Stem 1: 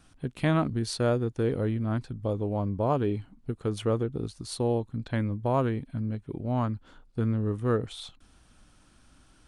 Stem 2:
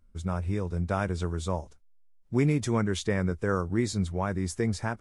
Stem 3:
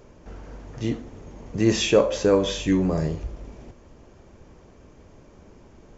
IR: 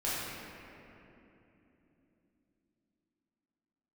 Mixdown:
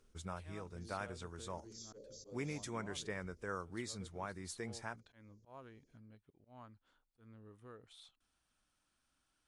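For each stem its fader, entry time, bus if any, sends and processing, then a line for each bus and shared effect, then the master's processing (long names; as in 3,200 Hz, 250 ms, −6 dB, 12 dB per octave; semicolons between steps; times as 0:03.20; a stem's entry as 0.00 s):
−17.5 dB, 0.00 s, bus A, no send, no processing
+2.5 dB, 0.00 s, no bus, no send, automatic ducking −12 dB, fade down 0.40 s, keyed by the third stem
−17.5 dB, 0.00 s, bus A, no send, elliptic band-stop filter 460–4,700 Hz, stop band 40 dB
bus A: 0.0 dB, volume swells 178 ms; downward compressor 5 to 1, threshold −44 dBFS, peak gain reduction 8.5 dB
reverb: not used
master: low-shelf EQ 470 Hz −11.5 dB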